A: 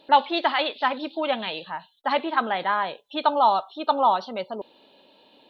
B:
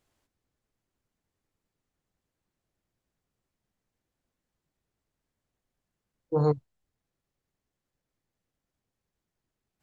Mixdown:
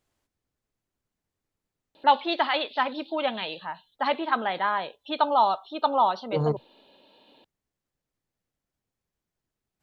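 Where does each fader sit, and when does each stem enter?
-2.0, -1.5 dB; 1.95, 0.00 s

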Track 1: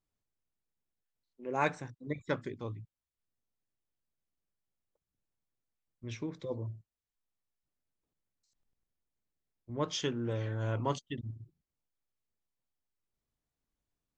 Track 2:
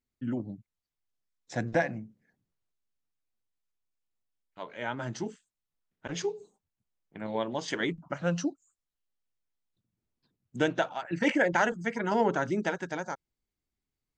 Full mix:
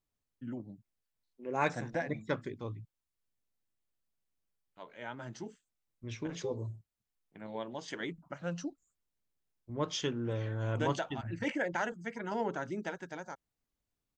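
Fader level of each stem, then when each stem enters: -0.5, -8.5 dB; 0.00, 0.20 s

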